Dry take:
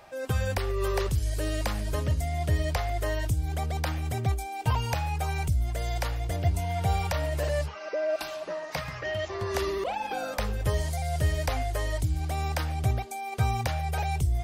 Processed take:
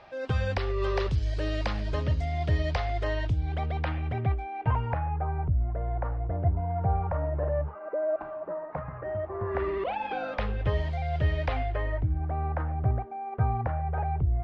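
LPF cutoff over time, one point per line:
LPF 24 dB/oct
2.94 s 4600 Hz
4.56 s 2300 Hz
5.35 s 1300 Hz
9.35 s 1300 Hz
9.92 s 3300 Hz
11.6 s 3300 Hz
12.17 s 1500 Hz

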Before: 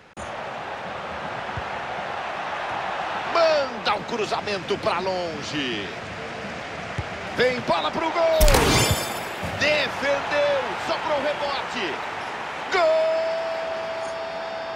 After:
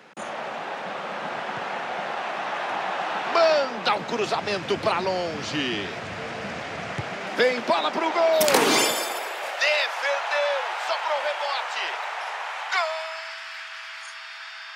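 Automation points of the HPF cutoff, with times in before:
HPF 24 dB/oct
3.56 s 170 Hz
4.72 s 74 Hz
6.77 s 74 Hz
7.41 s 210 Hz
8.62 s 210 Hz
9.66 s 600 Hz
12.39 s 600 Hz
13.46 s 1400 Hz

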